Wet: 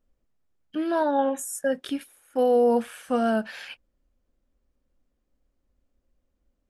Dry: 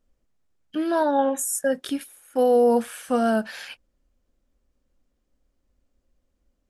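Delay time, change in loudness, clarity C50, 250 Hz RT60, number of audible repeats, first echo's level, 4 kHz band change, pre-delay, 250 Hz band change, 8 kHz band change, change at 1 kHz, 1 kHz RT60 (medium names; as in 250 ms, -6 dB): no echo, -2.0 dB, no reverb, no reverb, no echo, no echo, -2.5 dB, no reverb, -2.0 dB, -7.0 dB, -2.0 dB, no reverb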